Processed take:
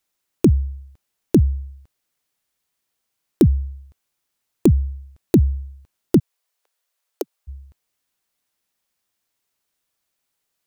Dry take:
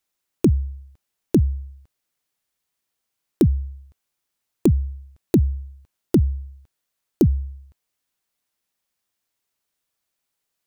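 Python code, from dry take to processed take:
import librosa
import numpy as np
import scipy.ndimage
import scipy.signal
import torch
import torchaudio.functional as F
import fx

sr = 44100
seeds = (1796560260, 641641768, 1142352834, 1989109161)

y = fx.steep_highpass(x, sr, hz=440.0, slope=36, at=(6.18, 7.47), fade=0.02)
y = y * 10.0 ** (2.5 / 20.0)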